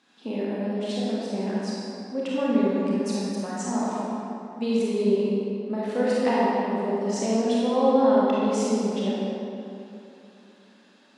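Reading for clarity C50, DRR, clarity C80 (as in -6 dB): -5.0 dB, -7.5 dB, -2.5 dB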